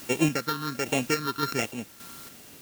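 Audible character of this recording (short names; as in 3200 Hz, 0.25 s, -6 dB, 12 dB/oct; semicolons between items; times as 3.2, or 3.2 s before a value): a buzz of ramps at a fixed pitch in blocks of 32 samples; phasing stages 6, 1.3 Hz, lowest notch 630–1300 Hz; a quantiser's noise floor 8-bit, dither triangular; random-step tremolo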